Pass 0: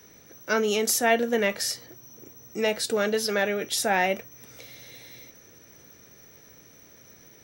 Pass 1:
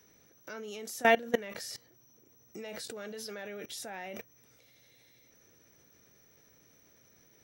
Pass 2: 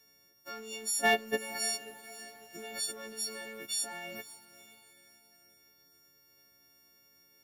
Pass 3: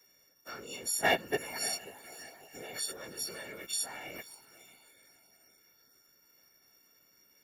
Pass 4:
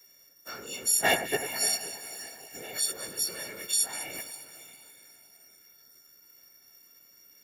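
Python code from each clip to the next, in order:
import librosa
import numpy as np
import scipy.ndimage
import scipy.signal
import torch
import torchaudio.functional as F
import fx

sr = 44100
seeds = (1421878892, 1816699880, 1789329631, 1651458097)

y1 = fx.level_steps(x, sr, step_db=21)
y2 = fx.freq_snap(y1, sr, grid_st=4)
y2 = fx.echo_diffused(y2, sr, ms=519, feedback_pct=47, wet_db=-14.5)
y2 = fx.leveller(y2, sr, passes=1)
y2 = y2 * 10.0 ** (-6.5 / 20.0)
y3 = fx.low_shelf(y2, sr, hz=94.0, db=-7.0)
y3 = fx.whisperise(y3, sr, seeds[0])
y3 = y3 * 10.0 ** (-1.0 / 20.0)
y4 = fx.high_shelf(y3, sr, hz=4400.0, db=8.5)
y4 = fx.echo_alternate(y4, sr, ms=100, hz=2100.0, feedback_pct=73, wet_db=-10)
y4 = y4 * 10.0 ** (1.5 / 20.0)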